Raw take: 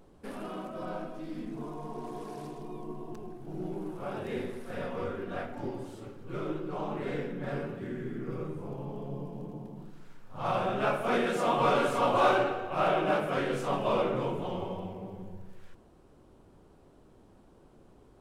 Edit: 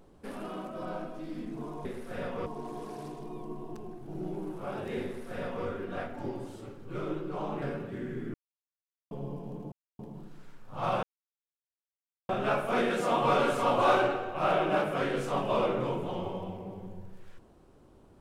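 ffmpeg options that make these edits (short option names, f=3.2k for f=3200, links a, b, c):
-filter_complex "[0:a]asplit=8[a][b][c][d][e][f][g][h];[a]atrim=end=1.852[i];[b]atrim=start=4.438:end=5.052[j];[c]atrim=start=1.848:end=7.012[k];[d]atrim=start=7.508:end=8.23,asetpts=PTS-STARTPTS,afade=t=out:st=0.718:d=0.004:c=hsin[l];[e]atrim=start=8.23:end=9,asetpts=PTS-STARTPTS,volume=0[m];[f]atrim=start=9:end=9.61,asetpts=PTS-STARTPTS,afade=t=in:d=0.004:c=hsin,afade=t=out:st=0.606:d=0.004:c=hsin,apad=pad_dur=0.27[n];[g]atrim=start=9.61:end=10.65,asetpts=PTS-STARTPTS,afade=t=in:d=0.004:c=hsin,afade=t=out:st=1.036:d=0.004:c=hsin,apad=pad_dur=1.26[o];[h]atrim=start=10.65,asetpts=PTS-STARTPTS,afade=t=in:d=0.004:c=hsin[p];[i][j]acrossfade=d=0.004:c1=hsin:c2=hsin[q];[q][k]acrossfade=d=0.004:c1=hsin:c2=hsin[r];[l][m][n][o][p]concat=n=5:v=0:a=1[s];[r][s]acrossfade=d=0.004:c1=hsin:c2=hsin"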